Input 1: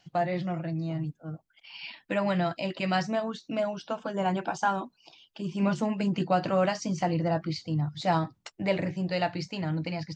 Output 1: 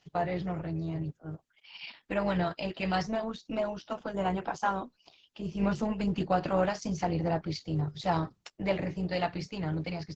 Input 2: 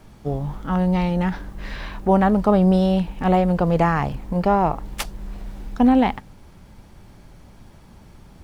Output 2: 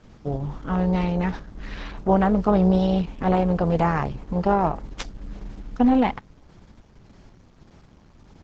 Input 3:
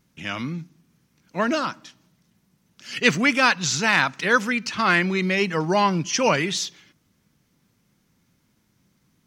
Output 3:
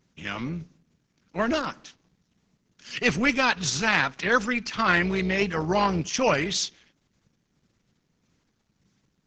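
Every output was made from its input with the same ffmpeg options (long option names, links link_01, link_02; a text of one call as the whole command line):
ffmpeg -i in.wav -af "aresample=16000,aresample=44100,tremolo=f=250:d=0.462" -ar 48000 -c:a libopus -b:a 10k out.opus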